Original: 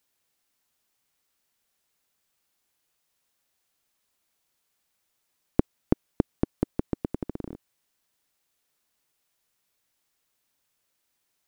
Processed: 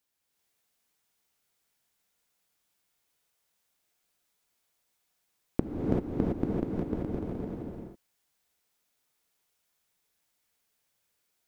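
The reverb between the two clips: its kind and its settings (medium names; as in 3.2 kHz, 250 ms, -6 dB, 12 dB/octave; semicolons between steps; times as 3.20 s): gated-style reverb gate 410 ms rising, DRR -4.5 dB; trim -6.5 dB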